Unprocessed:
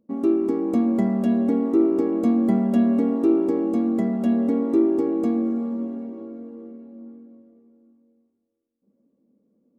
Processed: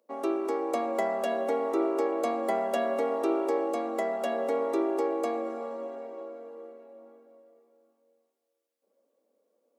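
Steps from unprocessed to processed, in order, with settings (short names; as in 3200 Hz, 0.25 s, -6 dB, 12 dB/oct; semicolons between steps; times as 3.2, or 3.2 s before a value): Chebyshev high-pass 560 Hz, order 3; gain +6 dB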